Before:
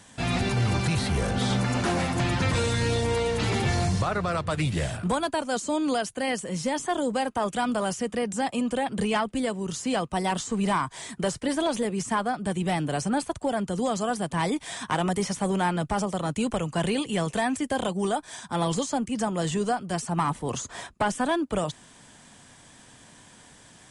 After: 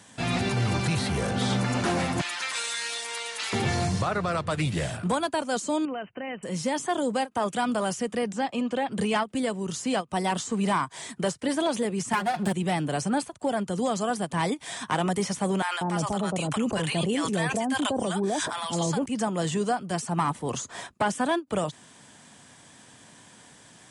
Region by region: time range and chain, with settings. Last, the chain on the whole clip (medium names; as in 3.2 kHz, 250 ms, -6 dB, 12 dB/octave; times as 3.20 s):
2.21–3.53 s: high-pass 1.3 kHz + treble shelf 6 kHz +5.5 dB
5.85–6.43 s: compression 2.5:1, threshold -33 dBFS + brick-wall FIR low-pass 3.1 kHz
8.32–8.91 s: low-pass 5.1 kHz + bass shelf 79 Hz -11 dB
12.13–12.53 s: comb filter that takes the minimum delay 1.2 ms + comb 5.6 ms, depth 75% + three bands compressed up and down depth 100%
15.62–19.06 s: bands offset in time highs, lows 190 ms, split 880 Hz + decay stretcher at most 27 dB/s
whole clip: high-pass 98 Hz; endings held to a fixed fall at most 470 dB/s